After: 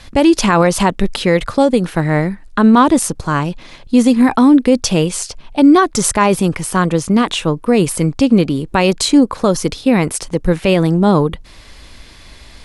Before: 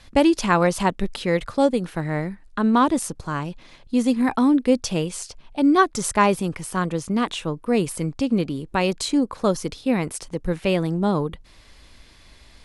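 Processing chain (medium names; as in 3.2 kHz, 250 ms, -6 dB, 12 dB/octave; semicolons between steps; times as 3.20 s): loudness maximiser +11.5 dB; trim -1 dB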